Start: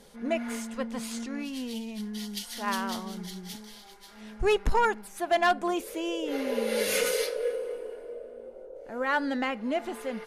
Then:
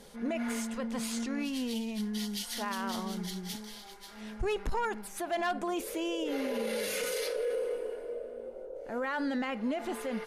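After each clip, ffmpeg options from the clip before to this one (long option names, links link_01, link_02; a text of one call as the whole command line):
ffmpeg -i in.wav -af "alimiter=level_in=3dB:limit=-24dB:level=0:latency=1:release=31,volume=-3dB,volume=1.5dB" out.wav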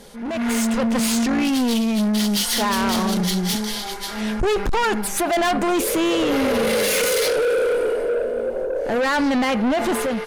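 ffmpeg -i in.wav -af "asoftclip=type=tanh:threshold=-37.5dB,dynaudnorm=framelen=160:gausssize=5:maxgain=11.5dB,volume=9dB" out.wav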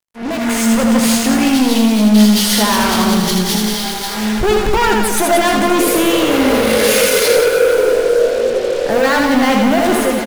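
ffmpeg -i in.wav -filter_complex "[0:a]acrusher=bits=4:mix=0:aa=0.5,asplit=2[link_01][link_02];[link_02]adelay=19,volume=-11dB[link_03];[link_01][link_03]amix=inputs=2:normalize=0,asplit=2[link_04][link_05];[link_05]aecho=0:1:80|180|305|461.2|656.6:0.631|0.398|0.251|0.158|0.1[link_06];[link_04][link_06]amix=inputs=2:normalize=0,volume=4.5dB" out.wav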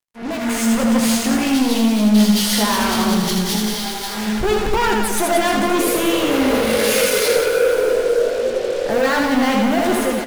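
ffmpeg -i in.wav -af "flanger=delay=7.7:depth=8.1:regen=-61:speed=1:shape=sinusoidal" out.wav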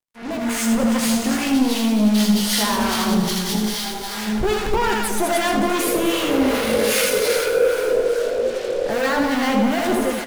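ffmpeg -i in.wav -filter_complex "[0:a]acrossover=split=960[link_01][link_02];[link_01]aeval=exprs='val(0)*(1-0.5/2+0.5/2*cos(2*PI*2.5*n/s))':channel_layout=same[link_03];[link_02]aeval=exprs='val(0)*(1-0.5/2-0.5/2*cos(2*PI*2.5*n/s))':channel_layout=same[link_04];[link_03][link_04]amix=inputs=2:normalize=0" out.wav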